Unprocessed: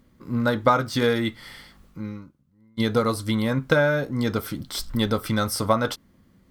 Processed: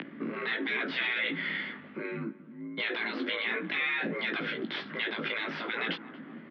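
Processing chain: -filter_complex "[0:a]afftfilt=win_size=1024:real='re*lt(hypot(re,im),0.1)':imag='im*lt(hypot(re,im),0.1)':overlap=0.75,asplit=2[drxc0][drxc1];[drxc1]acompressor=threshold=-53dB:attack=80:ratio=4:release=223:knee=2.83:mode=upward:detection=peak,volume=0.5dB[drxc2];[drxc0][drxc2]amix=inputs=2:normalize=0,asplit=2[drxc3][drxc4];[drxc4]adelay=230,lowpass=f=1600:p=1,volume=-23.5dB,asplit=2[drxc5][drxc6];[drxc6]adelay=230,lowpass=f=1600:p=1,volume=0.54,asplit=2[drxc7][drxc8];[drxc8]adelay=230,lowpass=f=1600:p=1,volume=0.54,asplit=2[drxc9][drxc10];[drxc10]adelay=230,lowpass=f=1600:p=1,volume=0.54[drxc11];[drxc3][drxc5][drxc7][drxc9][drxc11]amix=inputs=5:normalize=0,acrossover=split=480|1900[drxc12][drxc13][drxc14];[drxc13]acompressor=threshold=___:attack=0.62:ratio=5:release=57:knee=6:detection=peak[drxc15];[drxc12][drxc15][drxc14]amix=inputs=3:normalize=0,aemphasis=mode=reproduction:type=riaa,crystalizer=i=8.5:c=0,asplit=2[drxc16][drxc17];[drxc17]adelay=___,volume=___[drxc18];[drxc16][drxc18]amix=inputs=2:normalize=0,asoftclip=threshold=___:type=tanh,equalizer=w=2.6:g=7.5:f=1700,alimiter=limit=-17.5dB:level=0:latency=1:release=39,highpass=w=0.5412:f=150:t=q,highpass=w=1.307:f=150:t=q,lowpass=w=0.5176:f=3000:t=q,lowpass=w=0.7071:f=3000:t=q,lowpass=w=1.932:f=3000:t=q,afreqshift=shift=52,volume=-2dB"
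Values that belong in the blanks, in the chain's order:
-49dB, 18, -5.5dB, -17.5dB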